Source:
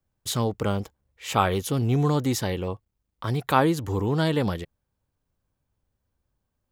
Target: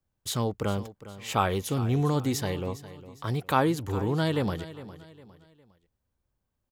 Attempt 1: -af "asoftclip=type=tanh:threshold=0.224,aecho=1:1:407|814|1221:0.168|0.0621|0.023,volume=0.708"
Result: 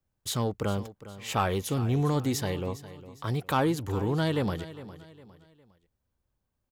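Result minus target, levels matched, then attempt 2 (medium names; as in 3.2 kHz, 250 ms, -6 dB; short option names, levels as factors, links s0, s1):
saturation: distortion +15 dB
-af "asoftclip=type=tanh:threshold=0.794,aecho=1:1:407|814|1221:0.168|0.0621|0.023,volume=0.708"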